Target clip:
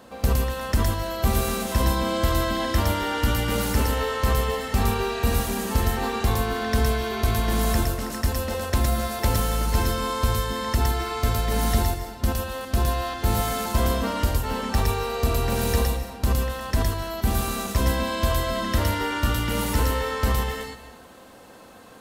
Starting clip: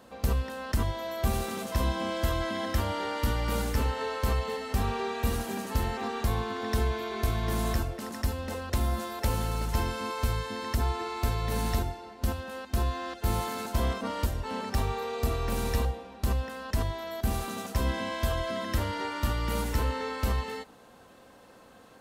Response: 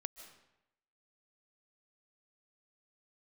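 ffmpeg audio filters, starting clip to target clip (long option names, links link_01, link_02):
-filter_complex "[0:a]asplit=2[link_01][link_02];[link_02]aemphasis=mode=production:type=cd[link_03];[1:a]atrim=start_sample=2205,asetrate=42777,aresample=44100,adelay=113[link_04];[link_03][link_04]afir=irnorm=-1:irlink=0,volume=-2.5dB[link_05];[link_01][link_05]amix=inputs=2:normalize=0,acontrast=42"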